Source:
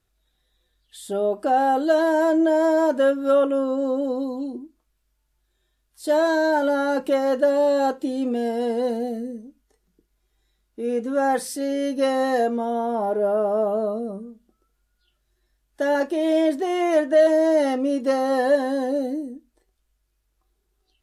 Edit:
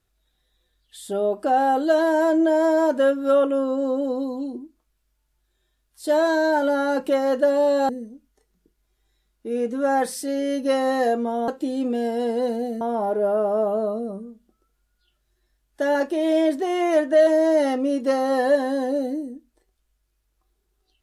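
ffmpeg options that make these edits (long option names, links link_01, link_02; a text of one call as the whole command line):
ffmpeg -i in.wav -filter_complex "[0:a]asplit=4[link_01][link_02][link_03][link_04];[link_01]atrim=end=7.892[link_05];[link_02]atrim=start=9.218:end=12.812[link_06];[link_03]atrim=start=7.888:end=9.222[link_07];[link_04]atrim=start=12.808[link_08];[link_05][link_06]acrossfade=duration=0.004:curve1=hsin:curve2=hsin[link_09];[link_09][link_07]acrossfade=duration=0.004:curve1=hsin:curve2=hsin[link_10];[link_10][link_08]acrossfade=duration=0.004:curve1=hsin:curve2=hsin" out.wav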